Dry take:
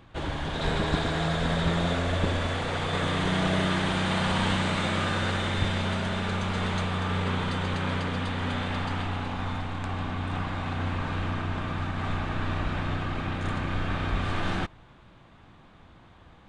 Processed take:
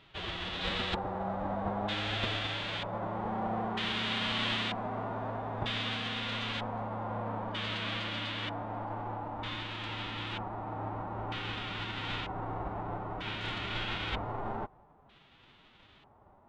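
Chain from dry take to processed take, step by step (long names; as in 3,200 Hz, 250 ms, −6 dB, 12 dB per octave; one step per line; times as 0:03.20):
spectral envelope flattened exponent 0.6
auto-filter low-pass square 0.53 Hz 840–3,300 Hz
phase-vocoder pitch shift with formants kept +3 semitones
level −9 dB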